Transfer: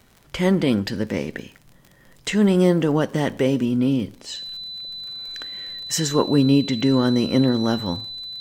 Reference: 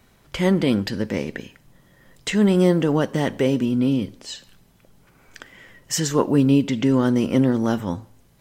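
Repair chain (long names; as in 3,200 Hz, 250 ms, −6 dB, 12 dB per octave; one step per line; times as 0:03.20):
click removal
notch filter 4,000 Hz, Q 30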